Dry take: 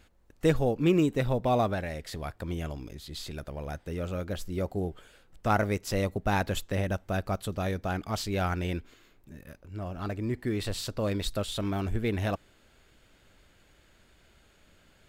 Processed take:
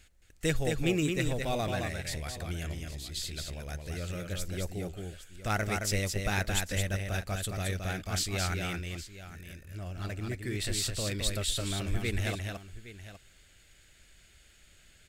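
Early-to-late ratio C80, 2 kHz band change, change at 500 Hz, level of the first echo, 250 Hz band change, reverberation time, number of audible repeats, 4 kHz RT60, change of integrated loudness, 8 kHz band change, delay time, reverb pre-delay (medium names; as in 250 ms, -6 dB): no reverb, +1.5 dB, -6.0 dB, -4.5 dB, -5.5 dB, no reverb, 2, no reverb, -2.5 dB, +8.0 dB, 219 ms, no reverb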